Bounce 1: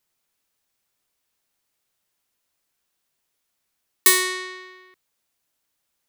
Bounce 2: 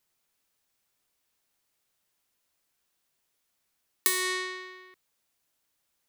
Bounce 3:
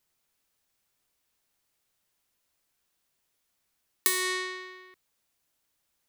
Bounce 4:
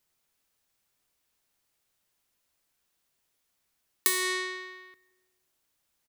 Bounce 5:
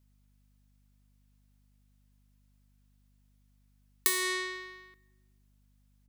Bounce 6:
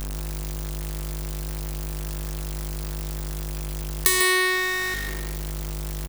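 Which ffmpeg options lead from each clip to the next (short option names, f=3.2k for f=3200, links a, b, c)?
-af "acompressor=threshold=-21dB:ratio=12,volume=-1dB"
-af "lowshelf=f=120:g=4"
-filter_complex "[0:a]asplit=2[a][b];[b]adelay=167,lowpass=f=2k:p=1,volume=-21dB,asplit=2[c][d];[d]adelay=167,lowpass=f=2k:p=1,volume=0.52,asplit=2[e][f];[f]adelay=167,lowpass=f=2k:p=1,volume=0.52,asplit=2[g][h];[h]adelay=167,lowpass=f=2k:p=1,volume=0.52[i];[a][c][e][g][i]amix=inputs=5:normalize=0"
-filter_complex "[0:a]asplit=2[a][b];[b]aeval=exprs='sgn(val(0))*max(abs(val(0))-0.00355,0)':c=same,volume=-9dB[c];[a][c]amix=inputs=2:normalize=0,aeval=exprs='val(0)+0.000891*(sin(2*PI*50*n/s)+sin(2*PI*2*50*n/s)/2+sin(2*PI*3*50*n/s)/3+sin(2*PI*4*50*n/s)/4+sin(2*PI*5*50*n/s)/5)':c=same,volume=-4.5dB"
-filter_complex "[0:a]aeval=exprs='val(0)+0.5*0.0316*sgn(val(0))':c=same,asplit=2[a][b];[b]aecho=0:1:146:0.422[c];[a][c]amix=inputs=2:normalize=0,volume=6dB"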